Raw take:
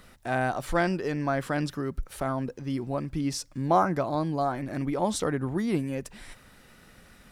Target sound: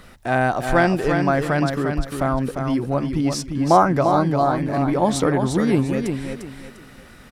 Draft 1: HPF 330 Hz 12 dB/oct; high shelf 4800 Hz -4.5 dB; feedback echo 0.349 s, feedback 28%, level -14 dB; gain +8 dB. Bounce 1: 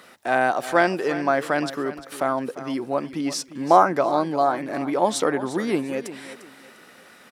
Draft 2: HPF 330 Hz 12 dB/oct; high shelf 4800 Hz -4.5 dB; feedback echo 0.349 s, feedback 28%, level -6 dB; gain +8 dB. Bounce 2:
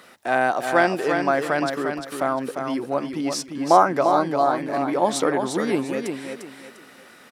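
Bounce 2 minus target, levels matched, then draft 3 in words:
250 Hz band -3.0 dB
high shelf 4800 Hz -4.5 dB; feedback echo 0.349 s, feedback 28%, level -6 dB; gain +8 dB

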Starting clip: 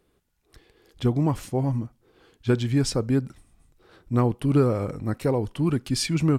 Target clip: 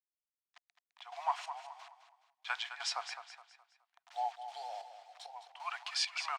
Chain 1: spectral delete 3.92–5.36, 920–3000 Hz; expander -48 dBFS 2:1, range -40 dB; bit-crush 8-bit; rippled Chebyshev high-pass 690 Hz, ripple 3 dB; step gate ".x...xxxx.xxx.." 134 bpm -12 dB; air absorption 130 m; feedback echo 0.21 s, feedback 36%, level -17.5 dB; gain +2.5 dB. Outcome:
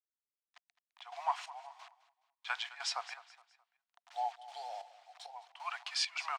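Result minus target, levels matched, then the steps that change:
echo-to-direct -7 dB
change: feedback echo 0.21 s, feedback 36%, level -10.5 dB

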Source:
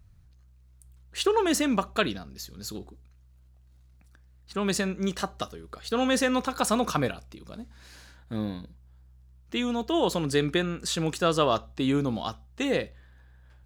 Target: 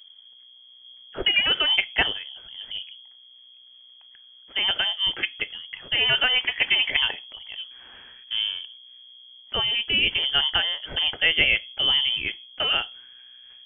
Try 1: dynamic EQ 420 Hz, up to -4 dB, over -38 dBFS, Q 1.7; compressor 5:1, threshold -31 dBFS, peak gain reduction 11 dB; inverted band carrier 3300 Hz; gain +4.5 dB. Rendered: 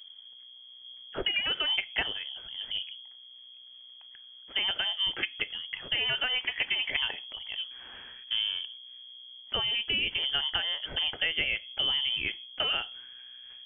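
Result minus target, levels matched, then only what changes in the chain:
compressor: peak gain reduction +11 dB
remove: compressor 5:1, threshold -31 dBFS, peak gain reduction 11 dB

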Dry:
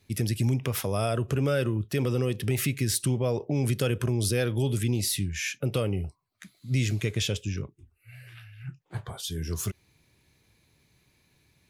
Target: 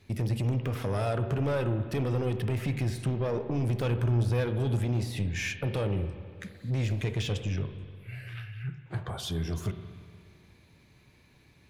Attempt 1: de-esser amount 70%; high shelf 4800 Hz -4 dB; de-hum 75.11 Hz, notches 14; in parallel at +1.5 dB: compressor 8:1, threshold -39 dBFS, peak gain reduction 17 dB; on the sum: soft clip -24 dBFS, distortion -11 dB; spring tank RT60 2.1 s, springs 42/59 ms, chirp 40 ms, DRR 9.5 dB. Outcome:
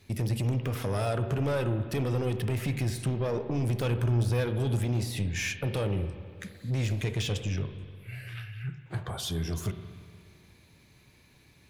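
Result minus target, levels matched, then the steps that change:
8000 Hz band +4.5 dB
change: high shelf 4800 Hz -11.5 dB

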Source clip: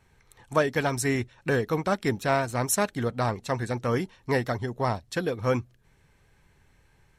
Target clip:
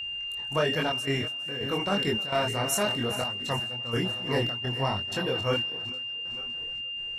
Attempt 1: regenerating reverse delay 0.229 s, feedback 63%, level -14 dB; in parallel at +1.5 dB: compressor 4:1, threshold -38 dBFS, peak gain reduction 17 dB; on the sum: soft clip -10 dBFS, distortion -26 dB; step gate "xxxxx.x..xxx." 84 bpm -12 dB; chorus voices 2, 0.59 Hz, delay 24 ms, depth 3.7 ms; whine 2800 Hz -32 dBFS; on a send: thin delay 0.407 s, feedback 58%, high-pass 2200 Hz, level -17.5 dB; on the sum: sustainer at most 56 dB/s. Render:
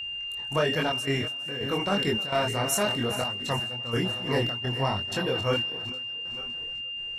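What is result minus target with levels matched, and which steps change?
compressor: peak gain reduction -8.5 dB
change: compressor 4:1, threshold -49.5 dBFS, peak gain reduction 26 dB

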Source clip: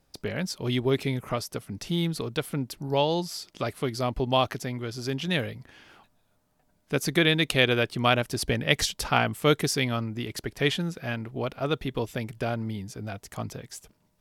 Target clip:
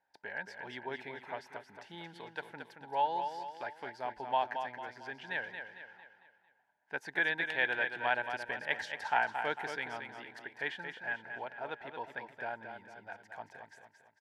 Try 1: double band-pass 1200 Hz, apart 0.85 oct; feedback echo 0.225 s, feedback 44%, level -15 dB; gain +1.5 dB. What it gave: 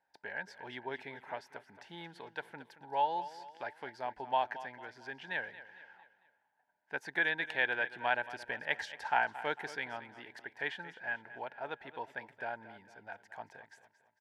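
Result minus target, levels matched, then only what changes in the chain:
echo-to-direct -7.5 dB
change: feedback echo 0.225 s, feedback 44%, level -7.5 dB

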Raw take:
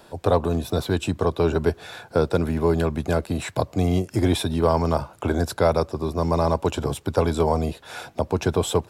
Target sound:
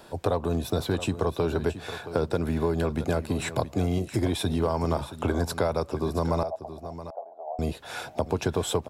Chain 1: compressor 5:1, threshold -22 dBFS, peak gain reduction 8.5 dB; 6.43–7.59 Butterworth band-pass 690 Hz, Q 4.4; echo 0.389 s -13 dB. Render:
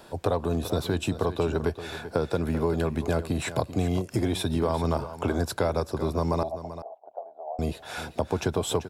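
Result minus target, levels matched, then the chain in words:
echo 0.284 s early
compressor 5:1, threshold -22 dBFS, peak gain reduction 8.5 dB; 6.43–7.59 Butterworth band-pass 690 Hz, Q 4.4; echo 0.673 s -13 dB

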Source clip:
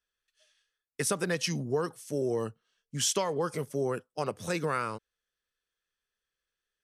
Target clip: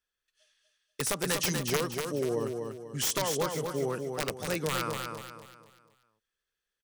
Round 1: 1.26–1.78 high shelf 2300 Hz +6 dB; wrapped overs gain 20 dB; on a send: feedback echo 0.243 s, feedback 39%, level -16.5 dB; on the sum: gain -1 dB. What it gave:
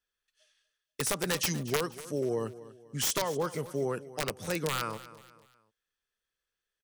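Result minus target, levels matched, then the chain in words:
echo-to-direct -11.5 dB
1.26–1.78 high shelf 2300 Hz +6 dB; wrapped overs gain 20 dB; on a send: feedback echo 0.243 s, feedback 39%, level -5 dB; on the sum: gain -1 dB

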